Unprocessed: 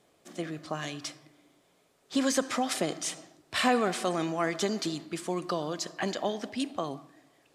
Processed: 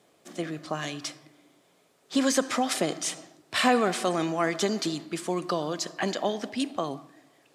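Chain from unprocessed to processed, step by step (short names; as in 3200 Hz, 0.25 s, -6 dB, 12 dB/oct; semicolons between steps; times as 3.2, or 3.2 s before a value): HPF 110 Hz; gain +3 dB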